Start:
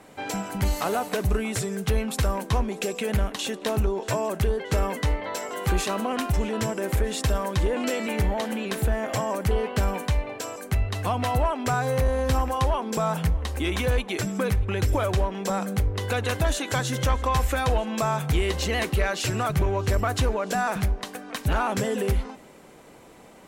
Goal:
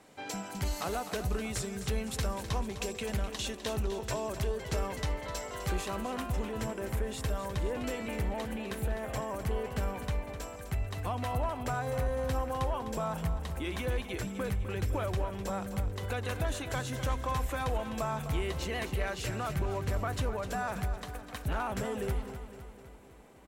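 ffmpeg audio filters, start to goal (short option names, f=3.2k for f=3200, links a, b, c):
-af "asetnsamples=n=441:p=0,asendcmd='5.77 equalizer g -3',equalizer=f=5.3k:t=o:w=1.5:g=4.5,aecho=1:1:254|508|762|1016|1270|1524:0.282|0.158|0.0884|0.0495|0.0277|0.0155,volume=-9dB"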